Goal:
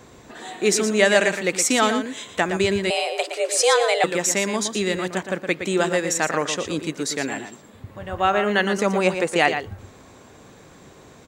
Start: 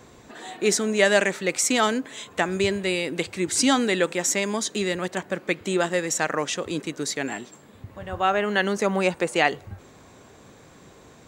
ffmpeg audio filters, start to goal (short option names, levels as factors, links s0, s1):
-filter_complex "[0:a]asplit=2[s0][s1];[s1]adelay=116.6,volume=0.398,highshelf=f=4000:g=-2.62[s2];[s0][s2]amix=inputs=2:normalize=0,asettb=1/sr,asplit=3[s3][s4][s5];[s3]atrim=end=2.904[s6];[s4]atrim=start=2.9:end=4.04,asetpts=PTS-STARTPTS,afade=t=in:d=0.004:c=qsin,afade=t=out:st=1.136:d=0.004:c=qsin,afreqshift=230[s7];[s5]atrim=start=4.036[s8];[s6][s7]acrossfade=d=0.004:c1=hsin:c2=qsin[s9];[s9][s8]acrossfade=d=0.004:c1=qsin:c2=hsin,volume=1.26"